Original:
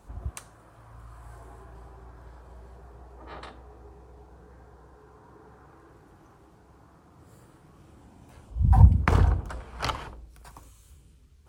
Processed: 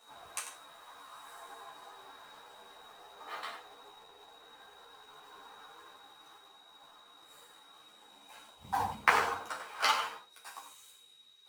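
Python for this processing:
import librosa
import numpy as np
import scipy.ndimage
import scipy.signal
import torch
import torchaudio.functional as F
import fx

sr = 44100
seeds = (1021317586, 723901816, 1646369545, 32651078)

p1 = scipy.signal.sosfilt(scipy.signal.butter(2, 800.0, 'highpass', fs=sr, output='sos'), x)
p2 = fx.quant_companded(p1, sr, bits=4)
p3 = p1 + (p2 * librosa.db_to_amplitude(-7.5))
p4 = p3 + 10.0 ** (-65.0 / 20.0) * np.sin(2.0 * np.pi * 3800.0 * np.arange(len(p3)) / sr)
p5 = p4 + fx.echo_single(p4, sr, ms=94, db=-10.5, dry=0)
p6 = fx.rev_gated(p5, sr, seeds[0], gate_ms=110, shape='falling', drr_db=2.0)
p7 = fx.ensemble(p6, sr)
y = p7 * librosa.db_to_amplitude(2.0)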